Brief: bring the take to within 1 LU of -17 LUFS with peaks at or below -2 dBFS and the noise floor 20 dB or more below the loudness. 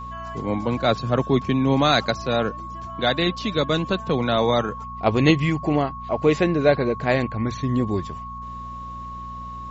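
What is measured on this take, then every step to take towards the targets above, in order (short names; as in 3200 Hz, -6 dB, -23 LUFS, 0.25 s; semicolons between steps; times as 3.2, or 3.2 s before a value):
hum 60 Hz; harmonics up to 240 Hz; hum level -36 dBFS; steady tone 1100 Hz; tone level -33 dBFS; loudness -22.0 LUFS; peak -4.5 dBFS; loudness target -17.0 LUFS
-> de-hum 60 Hz, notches 4; notch 1100 Hz, Q 30; gain +5 dB; limiter -2 dBFS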